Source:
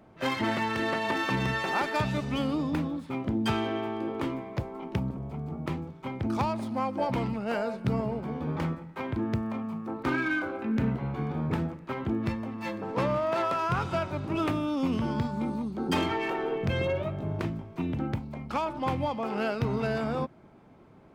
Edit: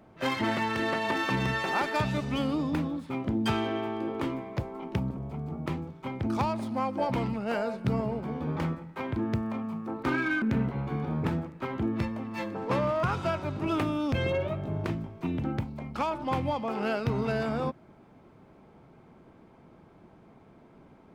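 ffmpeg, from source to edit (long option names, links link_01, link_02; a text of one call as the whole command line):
ffmpeg -i in.wav -filter_complex "[0:a]asplit=4[link_01][link_02][link_03][link_04];[link_01]atrim=end=10.422[link_05];[link_02]atrim=start=10.688:end=13.302[link_06];[link_03]atrim=start=13.708:end=14.802[link_07];[link_04]atrim=start=16.668[link_08];[link_05][link_06]acrossfade=duration=0.004:curve1=hsin:curve2=hsin[link_09];[link_09][link_07]acrossfade=duration=0.004:curve1=hsin:curve2=hsin[link_10];[link_10][link_08]acrossfade=duration=0.004:curve1=hsin:curve2=hsin" out.wav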